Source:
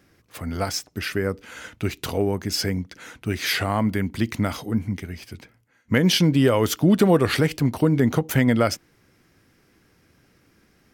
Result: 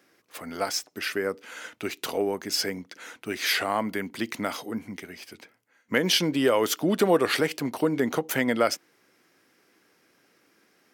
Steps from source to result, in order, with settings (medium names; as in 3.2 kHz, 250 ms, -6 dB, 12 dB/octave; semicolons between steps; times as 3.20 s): high-pass 330 Hz 12 dB/octave; trim -1 dB